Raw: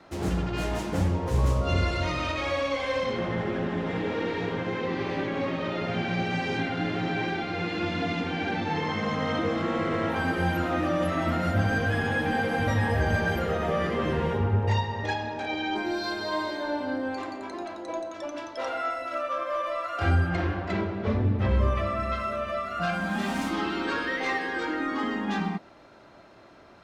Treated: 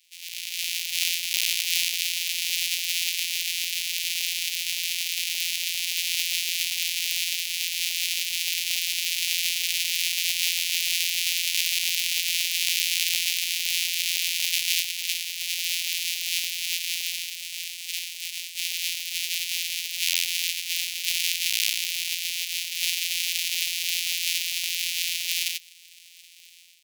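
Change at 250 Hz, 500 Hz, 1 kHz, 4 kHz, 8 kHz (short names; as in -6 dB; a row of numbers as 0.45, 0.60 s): under -40 dB, under -40 dB, under -35 dB, +15.0 dB, +24.0 dB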